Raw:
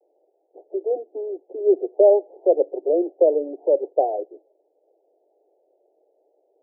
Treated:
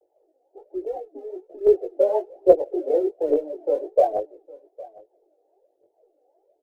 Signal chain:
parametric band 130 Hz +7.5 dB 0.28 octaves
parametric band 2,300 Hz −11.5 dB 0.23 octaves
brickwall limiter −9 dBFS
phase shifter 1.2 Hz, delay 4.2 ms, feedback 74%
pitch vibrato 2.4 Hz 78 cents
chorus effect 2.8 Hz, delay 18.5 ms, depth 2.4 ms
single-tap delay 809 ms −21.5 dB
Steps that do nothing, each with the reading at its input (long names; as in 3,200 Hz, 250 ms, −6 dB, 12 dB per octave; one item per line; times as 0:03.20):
parametric band 130 Hz: nothing at its input below 270 Hz
parametric band 2,300 Hz: nothing at its input above 850 Hz